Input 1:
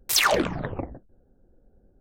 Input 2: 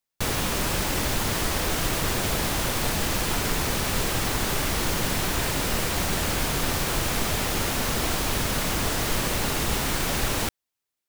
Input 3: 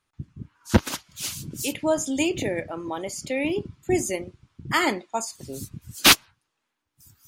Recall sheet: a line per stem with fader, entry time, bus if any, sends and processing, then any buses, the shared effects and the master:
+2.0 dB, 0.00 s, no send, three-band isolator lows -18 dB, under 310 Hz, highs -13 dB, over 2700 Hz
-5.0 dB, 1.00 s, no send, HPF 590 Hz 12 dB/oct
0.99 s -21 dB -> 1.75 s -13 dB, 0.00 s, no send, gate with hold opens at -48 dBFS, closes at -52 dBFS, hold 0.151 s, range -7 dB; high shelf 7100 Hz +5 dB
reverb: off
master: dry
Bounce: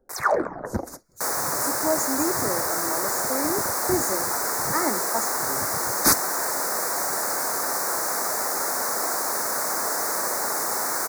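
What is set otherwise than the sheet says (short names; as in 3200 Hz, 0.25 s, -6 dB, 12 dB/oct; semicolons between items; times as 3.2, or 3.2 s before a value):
stem 2 -5.0 dB -> +4.5 dB; stem 3 -21.0 dB -> -10.0 dB; master: extra Butterworth band-stop 3000 Hz, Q 0.77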